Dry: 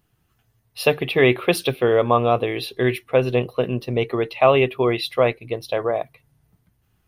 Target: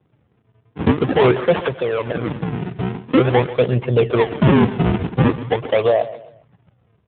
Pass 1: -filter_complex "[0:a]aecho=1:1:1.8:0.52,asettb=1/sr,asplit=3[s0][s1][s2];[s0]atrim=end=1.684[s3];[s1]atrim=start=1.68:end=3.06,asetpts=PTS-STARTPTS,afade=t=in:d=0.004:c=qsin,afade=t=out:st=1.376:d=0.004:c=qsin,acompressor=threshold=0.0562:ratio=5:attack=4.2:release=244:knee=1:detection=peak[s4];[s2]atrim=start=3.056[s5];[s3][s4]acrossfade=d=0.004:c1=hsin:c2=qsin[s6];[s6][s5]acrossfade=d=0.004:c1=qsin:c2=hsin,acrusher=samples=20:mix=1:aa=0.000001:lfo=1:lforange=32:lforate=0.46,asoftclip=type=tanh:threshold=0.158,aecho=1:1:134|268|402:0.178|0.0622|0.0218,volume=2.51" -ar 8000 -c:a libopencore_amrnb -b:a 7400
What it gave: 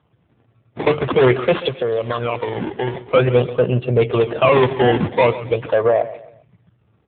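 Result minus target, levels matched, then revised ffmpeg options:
decimation with a swept rate: distortion -11 dB
-filter_complex "[0:a]aecho=1:1:1.8:0.52,asettb=1/sr,asplit=3[s0][s1][s2];[s0]atrim=end=1.684[s3];[s1]atrim=start=1.68:end=3.06,asetpts=PTS-STARTPTS,afade=t=in:d=0.004:c=qsin,afade=t=out:st=1.376:d=0.004:c=qsin,acompressor=threshold=0.0562:ratio=5:attack=4.2:release=244:knee=1:detection=peak[s4];[s2]atrim=start=3.056[s5];[s3][s4]acrossfade=d=0.004:c1=hsin:c2=qsin[s6];[s6][s5]acrossfade=d=0.004:c1=qsin:c2=hsin,acrusher=samples=45:mix=1:aa=0.000001:lfo=1:lforange=72:lforate=0.46,asoftclip=type=tanh:threshold=0.158,aecho=1:1:134|268|402:0.178|0.0622|0.0218,volume=2.51" -ar 8000 -c:a libopencore_amrnb -b:a 7400

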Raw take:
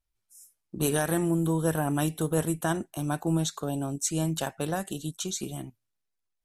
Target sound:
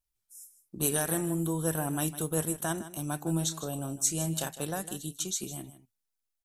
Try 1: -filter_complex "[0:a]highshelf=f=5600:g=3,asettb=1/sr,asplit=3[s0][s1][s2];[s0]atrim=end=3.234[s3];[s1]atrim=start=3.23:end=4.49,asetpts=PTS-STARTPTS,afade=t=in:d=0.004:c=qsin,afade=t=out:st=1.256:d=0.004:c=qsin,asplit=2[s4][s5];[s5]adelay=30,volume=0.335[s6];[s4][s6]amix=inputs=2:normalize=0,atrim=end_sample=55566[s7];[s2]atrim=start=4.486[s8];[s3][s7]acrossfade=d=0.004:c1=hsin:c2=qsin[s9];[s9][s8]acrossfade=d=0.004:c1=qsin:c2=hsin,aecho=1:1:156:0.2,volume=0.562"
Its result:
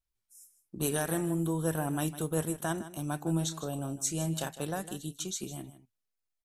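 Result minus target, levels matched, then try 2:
8 kHz band -3.0 dB
-filter_complex "[0:a]highshelf=f=5600:g=10.5,asettb=1/sr,asplit=3[s0][s1][s2];[s0]atrim=end=3.234[s3];[s1]atrim=start=3.23:end=4.49,asetpts=PTS-STARTPTS,afade=t=in:d=0.004:c=qsin,afade=t=out:st=1.256:d=0.004:c=qsin,asplit=2[s4][s5];[s5]adelay=30,volume=0.335[s6];[s4][s6]amix=inputs=2:normalize=0,atrim=end_sample=55566[s7];[s2]atrim=start=4.486[s8];[s3][s7]acrossfade=d=0.004:c1=hsin:c2=qsin[s9];[s9][s8]acrossfade=d=0.004:c1=qsin:c2=hsin,aecho=1:1:156:0.2,volume=0.562"

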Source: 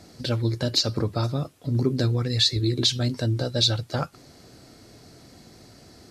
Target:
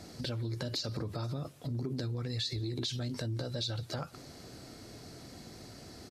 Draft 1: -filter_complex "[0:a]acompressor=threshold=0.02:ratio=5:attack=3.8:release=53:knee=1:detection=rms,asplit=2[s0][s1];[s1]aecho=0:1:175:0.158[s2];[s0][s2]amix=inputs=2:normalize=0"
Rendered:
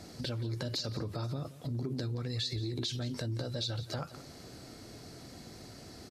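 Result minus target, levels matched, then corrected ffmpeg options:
echo-to-direct +10 dB
-filter_complex "[0:a]acompressor=threshold=0.02:ratio=5:attack=3.8:release=53:knee=1:detection=rms,asplit=2[s0][s1];[s1]aecho=0:1:175:0.0501[s2];[s0][s2]amix=inputs=2:normalize=0"

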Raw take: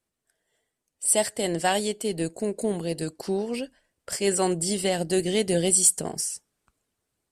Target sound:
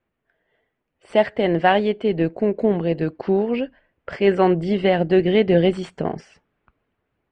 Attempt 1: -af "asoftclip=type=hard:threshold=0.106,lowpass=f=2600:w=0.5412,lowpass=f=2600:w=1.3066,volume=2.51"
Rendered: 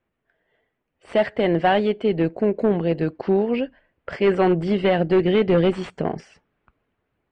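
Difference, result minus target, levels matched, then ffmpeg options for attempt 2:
hard clipper: distortion +11 dB
-af "asoftclip=type=hard:threshold=0.224,lowpass=f=2600:w=0.5412,lowpass=f=2600:w=1.3066,volume=2.51"

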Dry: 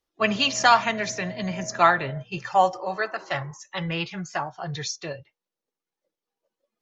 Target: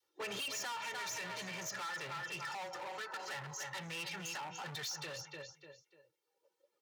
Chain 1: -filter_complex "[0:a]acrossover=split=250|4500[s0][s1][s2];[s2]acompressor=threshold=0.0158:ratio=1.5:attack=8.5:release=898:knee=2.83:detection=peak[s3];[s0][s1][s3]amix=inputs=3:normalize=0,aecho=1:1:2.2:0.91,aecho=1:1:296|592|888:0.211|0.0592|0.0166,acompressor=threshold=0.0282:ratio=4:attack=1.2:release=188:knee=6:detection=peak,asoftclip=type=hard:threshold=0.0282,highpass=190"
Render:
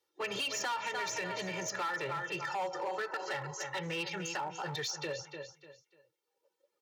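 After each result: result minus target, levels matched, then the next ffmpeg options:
hard clipper: distortion -7 dB; 500 Hz band +4.5 dB
-filter_complex "[0:a]acrossover=split=250|4500[s0][s1][s2];[s2]acompressor=threshold=0.0158:ratio=1.5:attack=8.5:release=898:knee=2.83:detection=peak[s3];[s0][s1][s3]amix=inputs=3:normalize=0,aecho=1:1:2.2:0.91,aecho=1:1:296|592|888:0.211|0.0592|0.0166,acompressor=threshold=0.0282:ratio=4:attack=1.2:release=188:knee=6:detection=peak,asoftclip=type=hard:threshold=0.0126,highpass=190"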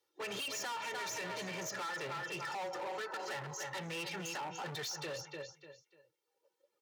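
500 Hz band +4.0 dB
-filter_complex "[0:a]acrossover=split=250|4500[s0][s1][s2];[s2]acompressor=threshold=0.0158:ratio=1.5:attack=8.5:release=898:knee=2.83:detection=peak[s3];[s0][s1][s3]amix=inputs=3:normalize=0,aecho=1:1:2.2:0.91,aecho=1:1:296|592|888:0.211|0.0592|0.0166,acompressor=threshold=0.0282:ratio=4:attack=1.2:release=188:knee=6:detection=peak,asoftclip=type=hard:threshold=0.0126,highpass=190,adynamicequalizer=threshold=0.00141:dfrequency=390:dqfactor=0.75:tfrequency=390:tqfactor=0.75:attack=5:release=100:ratio=0.438:range=4:mode=cutabove:tftype=bell"

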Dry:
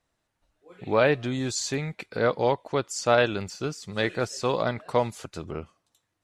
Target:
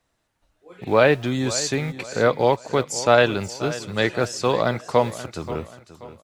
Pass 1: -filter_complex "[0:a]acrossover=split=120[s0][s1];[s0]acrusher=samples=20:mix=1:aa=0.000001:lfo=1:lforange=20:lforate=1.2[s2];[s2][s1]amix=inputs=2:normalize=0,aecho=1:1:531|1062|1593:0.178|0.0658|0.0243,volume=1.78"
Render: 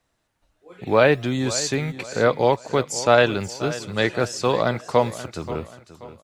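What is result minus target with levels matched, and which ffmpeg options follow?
decimation with a swept rate: distortion -7 dB
-filter_complex "[0:a]acrossover=split=120[s0][s1];[s0]acrusher=samples=44:mix=1:aa=0.000001:lfo=1:lforange=44:lforate=1.2[s2];[s2][s1]amix=inputs=2:normalize=0,aecho=1:1:531|1062|1593:0.178|0.0658|0.0243,volume=1.78"

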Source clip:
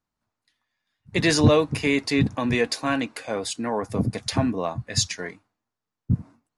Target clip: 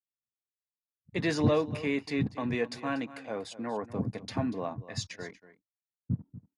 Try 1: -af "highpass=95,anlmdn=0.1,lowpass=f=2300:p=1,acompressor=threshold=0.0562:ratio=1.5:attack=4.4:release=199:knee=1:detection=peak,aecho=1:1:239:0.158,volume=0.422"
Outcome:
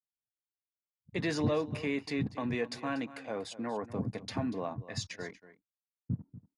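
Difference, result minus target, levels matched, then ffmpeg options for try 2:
compression: peak gain reduction +5.5 dB
-af "highpass=95,anlmdn=0.1,lowpass=f=2300:p=1,aecho=1:1:239:0.158,volume=0.422"

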